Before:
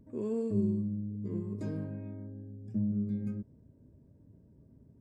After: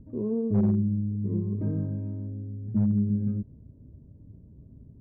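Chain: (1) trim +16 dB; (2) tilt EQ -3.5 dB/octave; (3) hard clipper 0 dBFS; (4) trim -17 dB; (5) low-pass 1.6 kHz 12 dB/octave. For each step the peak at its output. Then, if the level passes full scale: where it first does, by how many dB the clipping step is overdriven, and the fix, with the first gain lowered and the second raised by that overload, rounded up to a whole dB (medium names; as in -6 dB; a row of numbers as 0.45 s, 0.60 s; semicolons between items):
-3.0 dBFS, +5.0 dBFS, 0.0 dBFS, -17.0 dBFS, -17.0 dBFS; step 2, 5.0 dB; step 1 +11 dB, step 4 -12 dB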